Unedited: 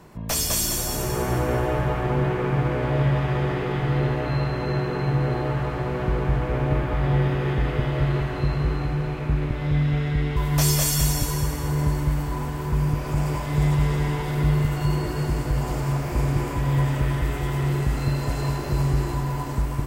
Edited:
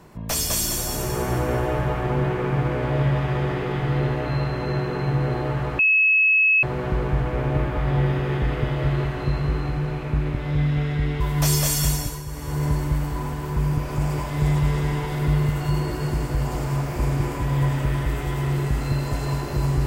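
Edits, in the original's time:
5.79 add tone 2580 Hz -14 dBFS 0.84 s
11.03–11.79 dip -10 dB, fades 0.37 s linear

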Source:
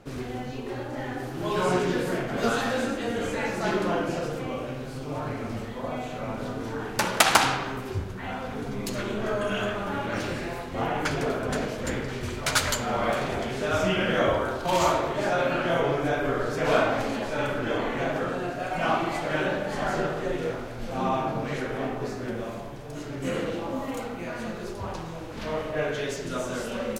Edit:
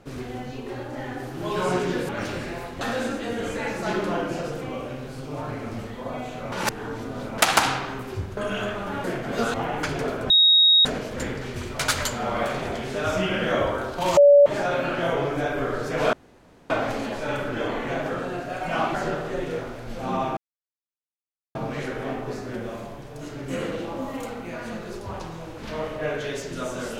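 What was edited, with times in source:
2.09–2.59 swap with 10.04–10.76
6.3–7.16 reverse
8.15–9.37 cut
11.52 add tone 3770 Hz -12.5 dBFS 0.55 s
14.84–15.13 bleep 573 Hz -9 dBFS
16.8 insert room tone 0.57 s
19.04–19.86 cut
21.29 insert silence 1.18 s

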